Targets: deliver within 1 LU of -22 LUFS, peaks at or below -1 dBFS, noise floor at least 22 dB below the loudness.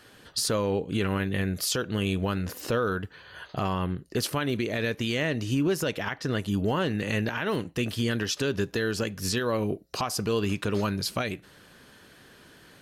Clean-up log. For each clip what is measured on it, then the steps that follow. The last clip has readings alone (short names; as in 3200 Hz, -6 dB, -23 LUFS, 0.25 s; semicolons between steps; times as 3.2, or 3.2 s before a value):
loudness -28.5 LUFS; peak -16.5 dBFS; loudness target -22.0 LUFS
-> gain +6.5 dB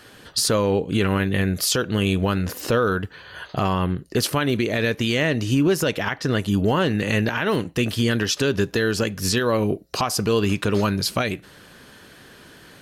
loudness -22.0 LUFS; peak -10.0 dBFS; noise floor -48 dBFS